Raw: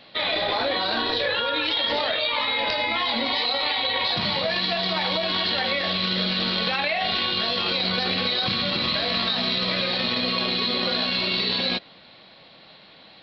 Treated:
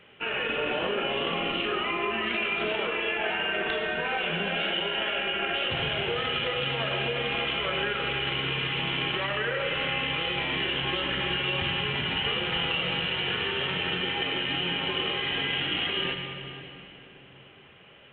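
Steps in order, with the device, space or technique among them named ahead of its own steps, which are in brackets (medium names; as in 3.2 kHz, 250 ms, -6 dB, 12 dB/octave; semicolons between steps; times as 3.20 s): slowed and reverbed (tape speed -27%; reverberation RT60 3.4 s, pre-delay 73 ms, DRR 4.5 dB); trim -5.5 dB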